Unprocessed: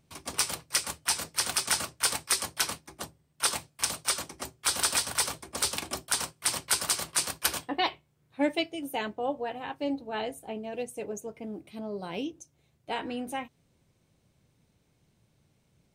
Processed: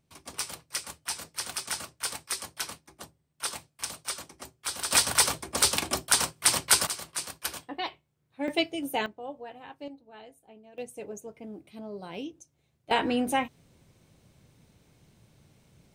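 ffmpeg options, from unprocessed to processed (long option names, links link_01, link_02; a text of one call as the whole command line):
ffmpeg -i in.wav -af "asetnsamples=nb_out_samples=441:pad=0,asendcmd='4.91 volume volume 5.5dB;6.87 volume volume -6dB;8.48 volume volume 3dB;9.06 volume volume -8.5dB;9.88 volume volume -15.5dB;10.78 volume volume -3.5dB;12.91 volume volume 8dB',volume=-6dB" out.wav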